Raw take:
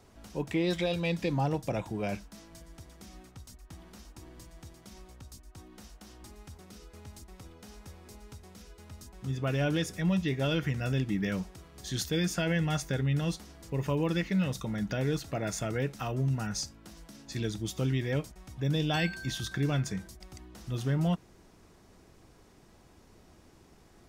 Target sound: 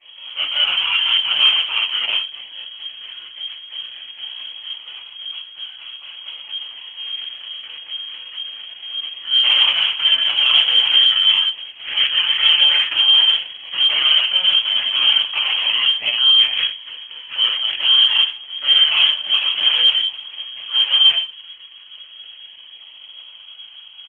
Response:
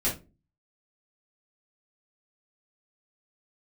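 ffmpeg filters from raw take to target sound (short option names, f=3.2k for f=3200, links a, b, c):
-filter_complex "[0:a]acrossover=split=130|900|2200[a][b][c][d];[b]asoftclip=type=hard:threshold=-31dB[e];[a][e][c][d]amix=inputs=4:normalize=0,acrusher=samples=24:mix=1:aa=0.000001:lfo=1:lforange=14.4:lforate=0.22,asoftclip=type=tanh:threshold=-24dB,aecho=1:1:31|72:0.2|0.158[f];[1:a]atrim=start_sample=2205,afade=t=out:st=0.14:d=0.01,atrim=end_sample=6615[g];[f][g]afir=irnorm=-1:irlink=0,lowpass=f=2.8k:t=q:w=0.5098,lowpass=f=2.8k:t=q:w=0.6013,lowpass=f=2.8k:t=q:w=0.9,lowpass=f=2.8k:t=q:w=2.563,afreqshift=-3300,volume=4dB" -ar 48000 -c:a libopus -b:a 10k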